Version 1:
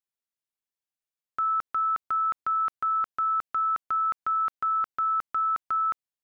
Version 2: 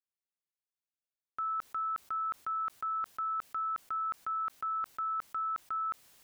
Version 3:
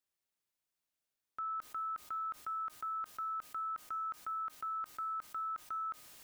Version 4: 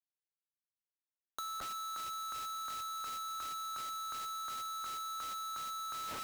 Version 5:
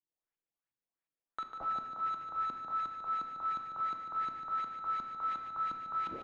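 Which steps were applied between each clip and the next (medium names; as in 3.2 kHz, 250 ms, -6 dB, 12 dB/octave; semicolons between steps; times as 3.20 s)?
decay stretcher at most 42 dB/s; trim -8.5 dB
peak limiter -40 dBFS, peak gain reduction 11.5 dB; feedback comb 310 Hz, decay 1 s, mix 70%; trim +15 dB
Schroeder reverb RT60 3.3 s, combs from 26 ms, DRR 10 dB; Schmitt trigger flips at -50 dBFS; three bands compressed up and down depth 70%; trim -1 dB
LFO low-pass saw up 2.8 Hz 240–2700 Hz; delay 147 ms -8 dB; simulated room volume 940 m³, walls mixed, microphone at 0.71 m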